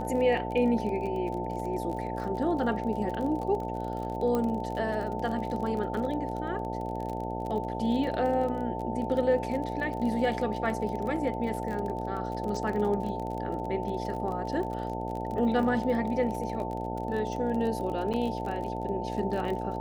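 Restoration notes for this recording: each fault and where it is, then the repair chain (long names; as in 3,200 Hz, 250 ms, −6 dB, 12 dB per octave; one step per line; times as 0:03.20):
mains buzz 60 Hz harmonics 13 −35 dBFS
surface crackle 29 per second −34 dBFS
whistle 890 Hz −36 dBFS
0:04.35: click −17 dBFS
0:18.13–0:18.14: drop-out 7.4 ms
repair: click removal
notch filter 890 Hz, Q 30
hum removal 60 Hz, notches 13
repair the gap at 0:18.13, 7.4 ms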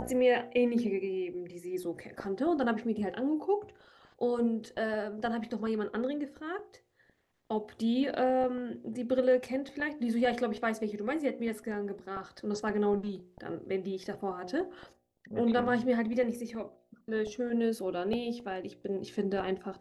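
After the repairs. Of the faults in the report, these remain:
none of them is left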